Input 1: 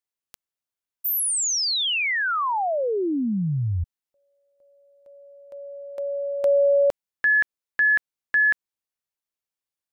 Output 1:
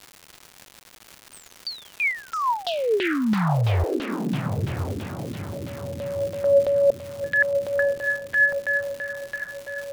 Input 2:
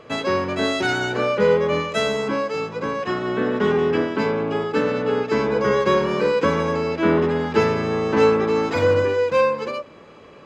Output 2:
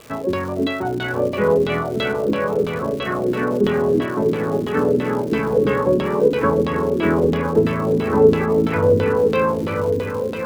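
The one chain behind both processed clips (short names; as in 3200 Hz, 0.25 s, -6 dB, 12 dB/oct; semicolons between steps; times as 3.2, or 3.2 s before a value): low shelf 230 Hz +9 dB; diffused feedback echo 0.976 s, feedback 47%, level -4.5 dB; LFO low-pass saw down 3 Hz 270–3800 Hz; crackle 310/s -26 dBFS; gain -4.5 dB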